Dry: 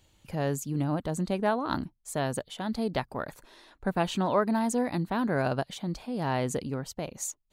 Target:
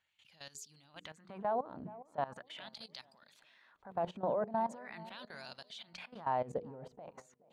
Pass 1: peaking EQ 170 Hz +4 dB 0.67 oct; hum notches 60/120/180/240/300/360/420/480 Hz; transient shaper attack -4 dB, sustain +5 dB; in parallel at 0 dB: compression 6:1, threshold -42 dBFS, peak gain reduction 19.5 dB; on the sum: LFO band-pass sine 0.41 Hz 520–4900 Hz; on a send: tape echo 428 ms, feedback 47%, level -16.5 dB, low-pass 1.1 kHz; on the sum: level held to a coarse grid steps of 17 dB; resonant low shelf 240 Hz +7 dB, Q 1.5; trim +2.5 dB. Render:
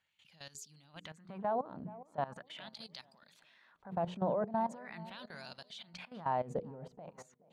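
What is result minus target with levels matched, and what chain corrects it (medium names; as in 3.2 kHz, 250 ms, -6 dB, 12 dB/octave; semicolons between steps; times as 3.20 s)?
125 Hz band +4.5 dB
peaking EQ 170 Hz -3.5 dB 0.67 oct; hum notches 60/120/180/240/300/360/420/480 Hz; transient shaper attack -4 dB, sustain +5 dB; in parallel at 0 dB: compression 6:1, threshold -42 dBFS, peak gain reduction 19 dB; on the sum: LFO band-pass sine 0.41 Hz 520–4900 Hz; on a send: tape echo 428 ms, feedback 47%, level -16.5 dB, low-pass 1.1 kHz; on the sum: level held to a coarse grid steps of 17 dB; resonant low shelf 240 Hz +7 dB, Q 1.5; trim +2.5 dB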